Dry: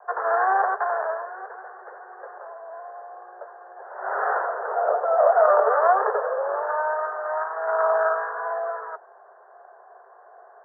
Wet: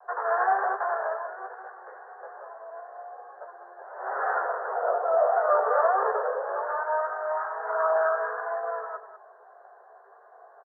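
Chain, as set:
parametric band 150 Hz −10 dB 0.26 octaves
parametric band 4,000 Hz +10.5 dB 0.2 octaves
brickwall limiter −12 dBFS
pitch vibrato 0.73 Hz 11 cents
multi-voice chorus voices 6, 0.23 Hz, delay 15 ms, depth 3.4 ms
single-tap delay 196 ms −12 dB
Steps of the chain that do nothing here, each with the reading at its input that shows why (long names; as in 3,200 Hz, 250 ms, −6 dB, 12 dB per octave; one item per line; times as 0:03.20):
parametric band 150 Hz: nothing at its input below 360 Hz
parametric band 4,000 Hz: nothing at its input above 1,800 Hz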